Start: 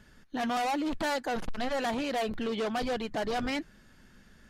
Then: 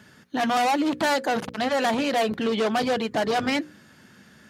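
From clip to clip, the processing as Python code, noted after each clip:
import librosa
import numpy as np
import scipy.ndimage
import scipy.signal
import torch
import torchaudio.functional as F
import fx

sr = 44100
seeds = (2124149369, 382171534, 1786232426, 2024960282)

y = scipy.signal.sosfilt(scipy.signal.butter(4, 98.0, 'highpass', fs=sr, output='sos'), x)
y = fx.hum_notches(y, sr, base_hz=60, count=9)
y = y * 10.0 ** (8.0 / 20.0)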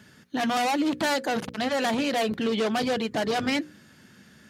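y = fx.peak_eq(x, sr, hz=900.0, db=-4.0, octaves=2.0)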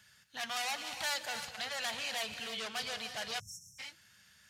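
y = fx.tone_stack(x, sr, knobs='10-0-10')
y = fx.rev_gated(y, sr, seeds[0], gate_ms=350, shape='rising', drr_db=7.5)
y = fx.spec_erase(y, sr, start_s=3.4, length_s=0.39, low_hz=210.0, high_hz=5300.0)
y = y * 10.0 ** (-3.0 / 20.0)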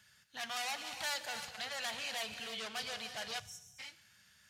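y = fx.rev_schroeder(x, sr, rt60_s=0.98, comb_ms=29, drr_db=17.5)
y = y * 10.0 ** (-2.5 / 20.0)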